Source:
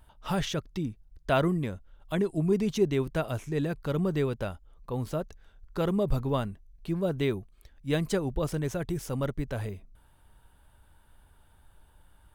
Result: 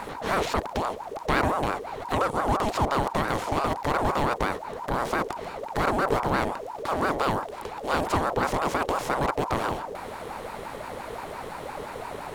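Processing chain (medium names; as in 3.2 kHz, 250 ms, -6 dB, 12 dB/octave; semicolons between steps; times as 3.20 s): spectral levelling over time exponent 0.4; ring modulator with a swept carrier 700 Hz, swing 40%, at 5.8 Hz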